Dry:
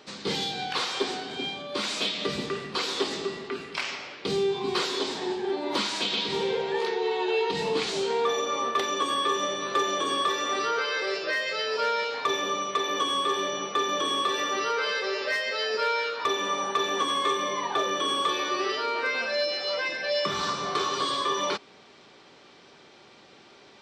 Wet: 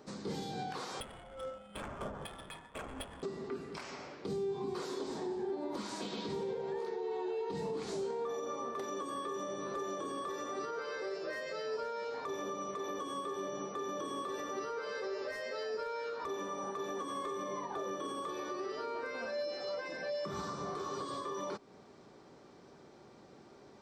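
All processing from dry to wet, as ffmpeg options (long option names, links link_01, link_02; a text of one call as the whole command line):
ffmpeg -i in.wav -filter_complex "[0:a]asettb=1/sr,asplit=3[link_01][link_02][link_03];[link_01]atrim=end=1.004[link_04];[link_02]atrim=start=1:end=3.23,asetpts=PTS-STARTPTS,afade=type=in:duration=0.004:curve=qsin,afade=type=out:start_time=2.226:duration=0.004:curve=qsin,lowpass=frequency=3100:width_type=q:width=0.5098,lowpass=frequency=3100:width_type=q:width=0.6013,lowpass=frequency=3100:width_type=q:width=0.9,lowpass=frequency=3100:width_type=q:width=2.563,afreqshift=-3700,adynamicsmooth=sensitivity=2.5:basefreq=970[link_05];[link_03]atrim=start=3.226[link_06];[link_04][link_05]acrossfade=duration=0.004:curve1=hsin:curve2=qsin[link_07];[link_07][link_06]acrossfade=duration=0.004:curve1=qsin:curve2=hsin,equalizer=frequency=3000:width=0.82:gain=-14.5,alimiter=level_in=5dB:limit=-24dB:level=0:latency=1:release=241,volume=-5dB,lowshelf=frequency=310:gain=5.5,volume=-3dB" out.wav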